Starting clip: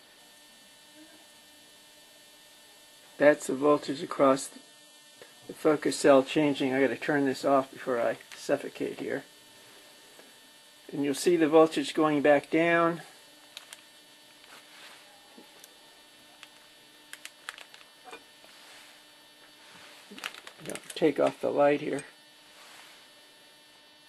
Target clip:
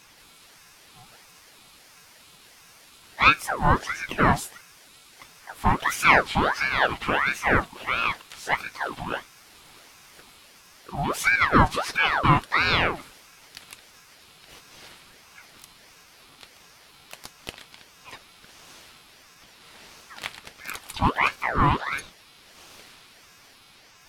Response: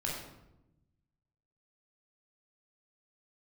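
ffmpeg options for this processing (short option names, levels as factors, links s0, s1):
-filter_complex "[0:a]asplit=2[s0][s1];[s1]asetrate=58866,aresample=44100,atempo=0.749154,volume=0.398[s2];[s0][s2]amix=inputs=2:normalize=0,aeval=exprs='val(0)*sin(2*PI*1200*n/s+1200*0.65/1.5*sin(2*PI*1.5*n/s))':c=same,volume=1.78"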